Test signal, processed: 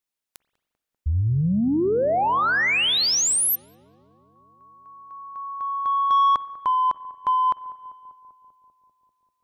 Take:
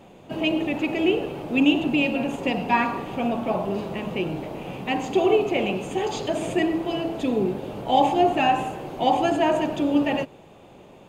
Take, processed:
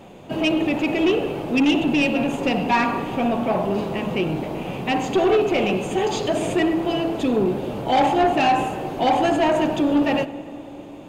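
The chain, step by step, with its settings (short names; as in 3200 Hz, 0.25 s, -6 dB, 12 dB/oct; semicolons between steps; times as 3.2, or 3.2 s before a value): soft clip -17.5 dBFS; on a send: darkening echo 0.196 s, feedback 79%, low-pass 1300 Hz, level -18 dB; on the sum: spring tank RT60 1.5 s, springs 44/58 ms, chirp 55 ms, DRR 17.5 dB; gain +5 dB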